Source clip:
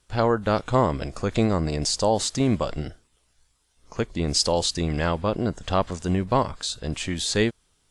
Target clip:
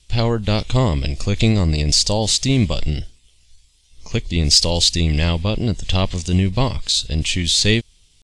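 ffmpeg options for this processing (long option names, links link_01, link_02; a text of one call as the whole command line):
ffmpeg -i in.wav -af "aexciter=amount=7.6:drive=8.4:freq=2200,atempo=0.96,aemphasis=mode=reproduction:type=riaa,volume=-3dB" out.wav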